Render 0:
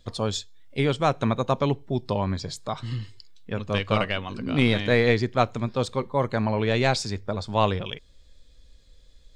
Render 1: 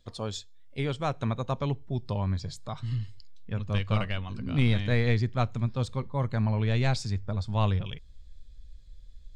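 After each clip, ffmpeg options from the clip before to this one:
-af "asubboost=boost=4.5:cutoff=170,volume=-7.5dB"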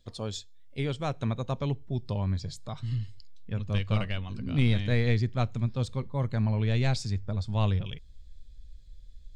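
-af "equalizer=f=1.1k:w=0.9:g=-4.5"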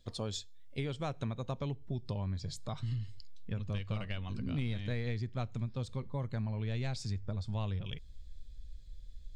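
-af "acompressor=threshold=-33dB:ratio=6"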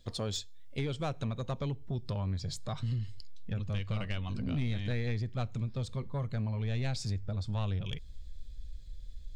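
-af "aeval=exprs='(tanh(31.6*val(0)+0.15)-tanh(0.15))/31.6':c=same,volume=4.5dB"

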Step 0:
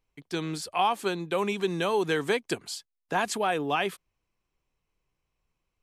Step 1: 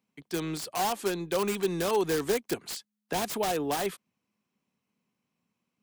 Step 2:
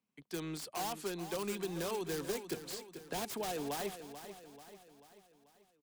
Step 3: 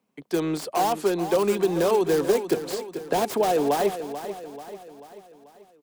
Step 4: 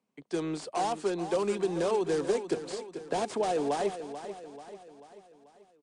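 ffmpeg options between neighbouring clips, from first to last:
-filter_complex "[0:a]acrossover=split=110|880[a][b][c];[a]aeval=exprs='val(0)*sin(2*PI*210*n/s)':c=same[d];[c]aeval=exprs='(mod(28.2*val(0)+1,2)-1)/28.2':c=same[e];[d][b][e]amix=inputs=3:normalize=0"
-filter_complex "[0:a]acrossover=split=190|3000[a][b][c];[b]acompressor=threshold=-28dB:ratio=6[d];[a][d][c]amix=inputs=3:normalize=0,asplit=2[e][f];[f]aecho=0:1:438|876|1314|1752|2190:0.282|0.141|0.0705|0.0352|0.0176[g];[e][g]amix=inputs=2:normalize=0,volume=-7.5dB"
-af "equalizer=f=530:t=o:w=2.5:g=11,volume=7.5dB"
-af "volume=-6.5dB" -ar 22050 -c:a libmp3lame -b:a 64k

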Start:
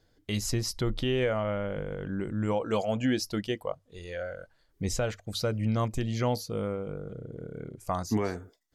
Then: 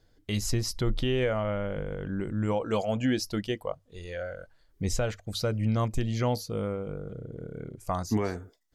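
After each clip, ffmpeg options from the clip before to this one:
-af "lowshelf=f=64:g=7"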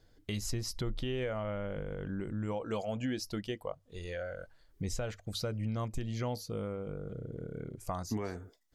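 -af "acompressor=threshold=-38dB:ratio=2"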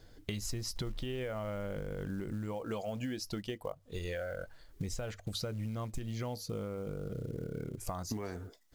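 -af "acompressor=threshold=-43dB:ratio=5,acrusher=bits=7:mode=log:mix=0:aa=0.000001,volume=7.5dB"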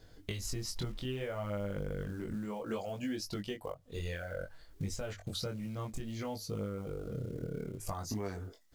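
-af "flanger=delay=19.5:depth=4.7:speed=0.62,volume=3dB"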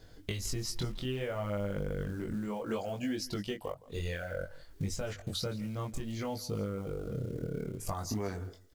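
-af "aecho=1:1:165:0.1,volume=2.5dB"

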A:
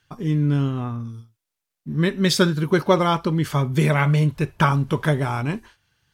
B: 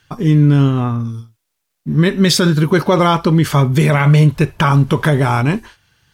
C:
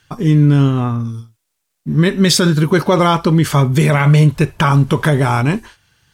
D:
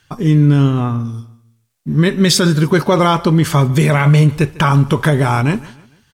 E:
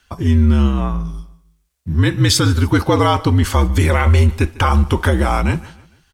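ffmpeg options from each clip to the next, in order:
-af "alimiter=level_in=13dB:limit=-1dB:release=50:level=0:latency=1,volume=-3dB"
-af "equalizer=f=8.2k:w=1.4:g=3.5"
-af "aecho=1:1:149|298|447:0.0891|0.0365|0.015"
-af "afreqshift=-65,volume=-1.5dB"

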